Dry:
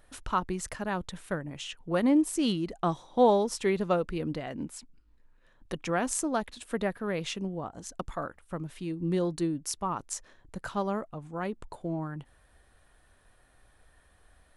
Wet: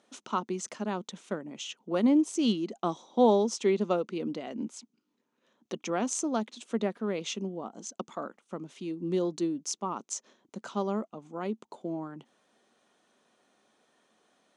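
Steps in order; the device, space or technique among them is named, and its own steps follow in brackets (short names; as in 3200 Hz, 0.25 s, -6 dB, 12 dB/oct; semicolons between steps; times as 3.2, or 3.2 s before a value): television speaker (speaker cabinet 200–7900 Hz, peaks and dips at 220 Hz +8 dB, 390 Hz +4 dB, 1700 Hz -8 dB, 3300 Hz +3 dB, 6300 Hz +8 dB); gain -2 dB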